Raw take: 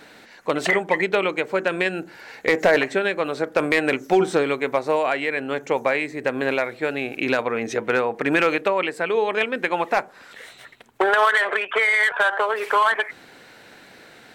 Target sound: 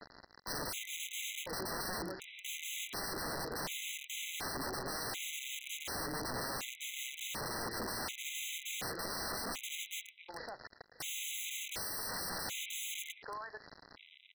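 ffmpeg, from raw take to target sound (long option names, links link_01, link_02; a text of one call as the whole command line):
ffmpeg -i in.wav -af "lowpass=frequency=1500:poles=1,equalizer=frequency=130:width=5.1:gain=7,bandreject=frequency=89.12:width_type=h:width=4,bandreject=frequency=178.24:width_type=h:width=4,alimiter=limit=-16.5dB:level=0:latency=1:release=234,aresample=11025,acrusher=bits=6:mix=0:aa=0.000001,aresample=44100,aecho=1:1:111|553:0.188|0.15,aeval=exprs='(mod(31.6*val(0)+1,2)-1)/31.6':channel_layout=same,afftfilt=real='re*gt(sin(2*PI*0.68*pts/sr)*(1-2*mod(floor(b*sr/1024/2000),2)),0)':imag='im*gt(sin(2*PI*0.68*pts/sr)*(1-2*mod(floor(b*sr/1024/2000),2)),0)':win_size=1024:overlap=0.75,volume=-2.5dB" out.wav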